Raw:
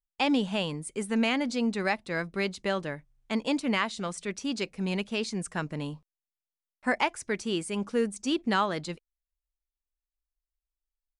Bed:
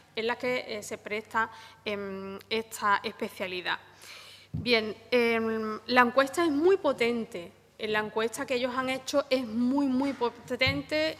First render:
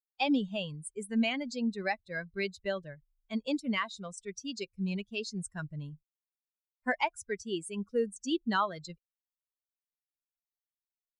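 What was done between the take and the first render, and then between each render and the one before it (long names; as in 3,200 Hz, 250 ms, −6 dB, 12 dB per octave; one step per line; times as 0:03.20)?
spectral dynamics exaggerated over time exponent 2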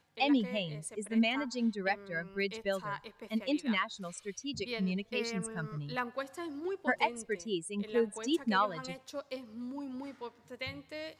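mix in bed −14.5 dB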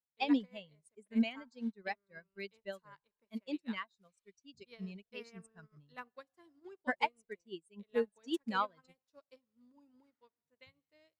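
expander for the loud parts 2.5 to 1, over −47 dBFS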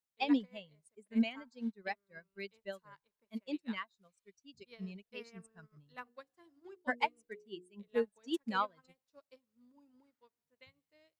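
0:05.84–0:07.88: mains-hum notches 60/120/180/240/300/360/420/480 Hz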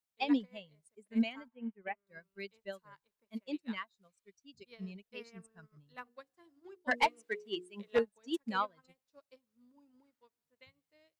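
0:01.48–0:02.07: Chebyshev low-pass with heavy ripple 3,100 Hz, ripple 3 dB
0:06.91–0:07.99: mid-hump overdrive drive 20 dB, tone 3,700 Hz, clips at −17.5 dBFS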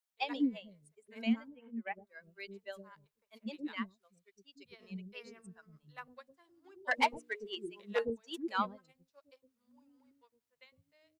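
multiband delay without the direct sound highs, lows 110 ms, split 410 Hz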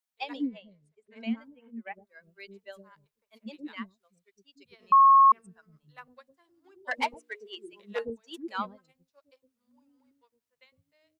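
0:00.47–0:01.41: high-frequency loss of the air 99 metres
0:04.92–0:05.32: beep over 1,090 Hz −13.5 dBFS
0:07.14–0:07.73: high-pass filter 360 Hz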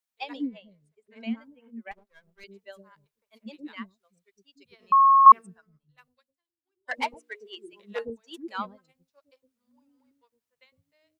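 0:01.91–0:02.44: gain on one half-wave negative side −12 dB
0:05.26–0:06.91: multiband upward and downward expander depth 100%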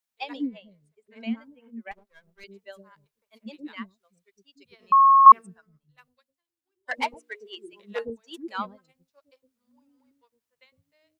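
level +1.5 dB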